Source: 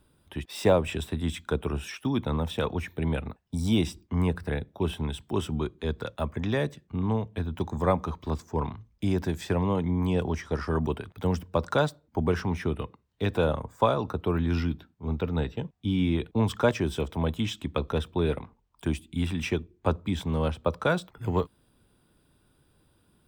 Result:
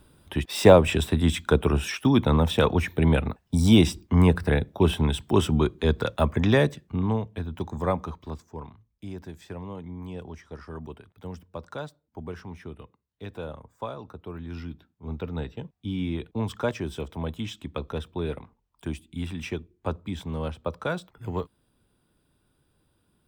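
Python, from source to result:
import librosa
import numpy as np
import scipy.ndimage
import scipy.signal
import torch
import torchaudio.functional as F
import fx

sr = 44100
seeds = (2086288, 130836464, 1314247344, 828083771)

y = fx.gain(x, sr, db=fx.line((6.55, 7.5), (7.4, -1.5), (8.01, -1.5), (8.7, -11.5), (14.4, -11.5), (15.14, -4.0)))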